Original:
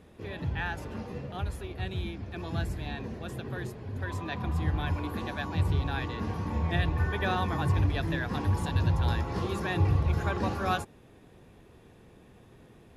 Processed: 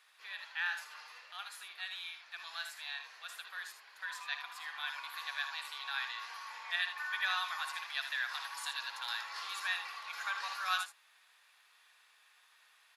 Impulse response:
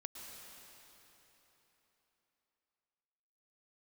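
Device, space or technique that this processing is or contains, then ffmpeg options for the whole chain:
headphones lying on a table: -filter_complex "[0:a]asettb=1/sr,asplit=3[link_01][link_02][link_03];[link_01]atrim=end=7.344[link_04];[link_02]atrim=start=7.34:end=8.74,asetpts=PTS-STARTPTS,afade=type=in:duration=0.004:curve=qsin,afade=type=out:start_time=1.396:duration=0.004:curve=qsin,bass=frequency=250:gain=-13,treble=frequency=4000:gain=1[link_05];[link_03]atrim=start=8.736[link_06];[link_04][link_05]acrossfade=duration=0.004:curve1=hsin:curve2=qsin[link_07];[link_07][link_06]acrossfade=duration=0.004:curve1=qsin:curve2=hsin,highpass=frequency=1200:width=0.5412,highpass=frequency=1200:width=1.3066,equalizer=frequency=4400:width_type=o:width=0.41:gain=6,aecho=1:1:57|78:0.266|0.335"

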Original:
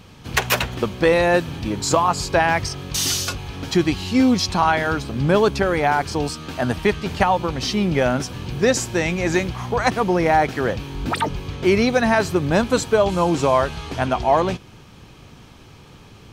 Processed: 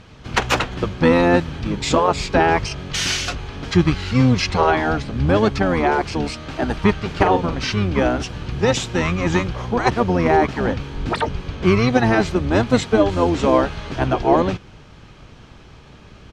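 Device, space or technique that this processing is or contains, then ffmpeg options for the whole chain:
octave pedal: -filter_complex "[0:a]asplit=2[link_01][link_02];[link_02]asetrate=22050,aresample=44100,atempo=2,volume=-1dB[link_03];[link_01][link_03]amix=inputs=2:normalize=0,lowpass=6600,asettb=1/sr,asplit=3[link_04][link_05][link_06];[link_04]atrim=end=7.114[link_07];[link_05]atrim=start=7.11:end=7.59,asetpts=PTS-STARTPTS,afade=type=in:duration=0.004:curve=qsin,afade=type=out:start_time=0.476:duration=0.004:curve=qsin,asplit=2[link_08][link_09];[link_09]adelay=43,volume=-8.5dB[link_10];[link_08][link_10]amix=inputs=2:normalize=0,atrim=end_sample=21168[link_11];[link_06]atrim=start=7.586[link_12];[link_07][link_11]acrossfade=duration=0.004:curve1=hsin:curve2=qsin[link_13];[link_13][link_12]acrossfade=duration=0.004:curve1=qsin:curve2=hsin,volume=-1dB"

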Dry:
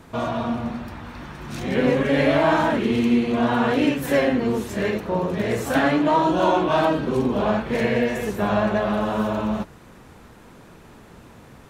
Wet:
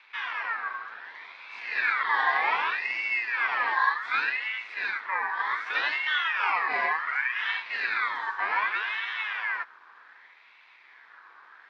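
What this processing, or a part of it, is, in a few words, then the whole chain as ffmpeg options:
voice changer toy: -filter_complex "[0:a]aeval=exprs='val(0)*sin(2*PI*1900*n/s+1900*0.3/0.66*sin(2*PI*0.66*n/s))':channel_layout=same,highpass=530,equalizer=frequency=590:width_type=q:width=4:gain=-6,equalizer=frequency=1000:width_type=q:width=4:gain=7,equalizer=frequency=1700:width_type=q:width=4:gain=4,equalizer=frequency=2900:width_type=q:width=4:gain=-8,lowpass=frequency=4200:width=0.5412,lowpass=frequency=4200:width=1.3066,asettb=1/sr,asplit=3[link_01][link_02][link_03];[link_01]atrim=end=3.494[link_04];[link_02]atrim=start=3.49:end=4.14,asetpts=PTS-STARTPTS,afade=type=in:duration=0.004:curve=qsin,afade=type=out:start_time=0.646:duration=0.004:curve=qsin,highpass=frequency=190:poles=1[link_05];[link_03]atrim=start=4.136[link_06];[link_04][link_05]acrossfade=duration=0.004:curve1=hsin:curve2=qsin[link_07];[link_07][link_06]acrossfade=duration=0.004:curve1=qsin:curve2=hsin,volume=-5.5dB"

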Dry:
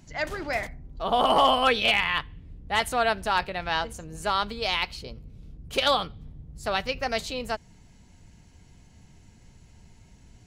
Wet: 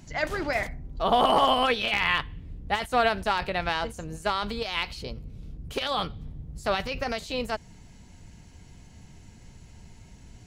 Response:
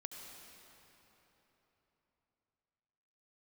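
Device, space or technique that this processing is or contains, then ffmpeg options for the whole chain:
de-esser from a sidechain: -filter_complex "[0:a]asplit=2[link_01][link_02];[link_02]highpass=frequency=5700:width=0.5412,highpass=frequency=5700:width=1.3066,apad=whole_len=461534[link_03];[link_01][link_03]sidechaincompress=threshold=-49dB:ratio=5:attack=0.99:release=23,volume=4dB"

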